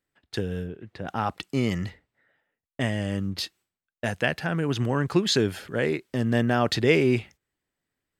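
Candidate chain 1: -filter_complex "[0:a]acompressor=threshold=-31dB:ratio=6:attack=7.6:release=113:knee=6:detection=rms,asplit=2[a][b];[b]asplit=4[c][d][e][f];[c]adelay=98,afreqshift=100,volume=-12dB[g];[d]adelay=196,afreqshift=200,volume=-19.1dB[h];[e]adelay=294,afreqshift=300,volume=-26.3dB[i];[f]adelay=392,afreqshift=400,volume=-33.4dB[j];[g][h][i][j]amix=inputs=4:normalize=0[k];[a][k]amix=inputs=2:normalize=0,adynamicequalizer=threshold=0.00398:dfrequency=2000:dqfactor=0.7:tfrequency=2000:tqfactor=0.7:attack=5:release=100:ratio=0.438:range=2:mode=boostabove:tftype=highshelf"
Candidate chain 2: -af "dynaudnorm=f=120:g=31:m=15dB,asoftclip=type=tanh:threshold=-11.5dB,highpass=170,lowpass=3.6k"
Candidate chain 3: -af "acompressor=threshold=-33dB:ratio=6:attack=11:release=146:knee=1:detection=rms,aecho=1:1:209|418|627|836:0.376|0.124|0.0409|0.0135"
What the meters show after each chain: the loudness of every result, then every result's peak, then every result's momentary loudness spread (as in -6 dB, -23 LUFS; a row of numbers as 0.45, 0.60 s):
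-35.5, -25.0, -37.5 LUFS; -15.0, -8.5, -19.5 dBFS; 9, 13, 11 LU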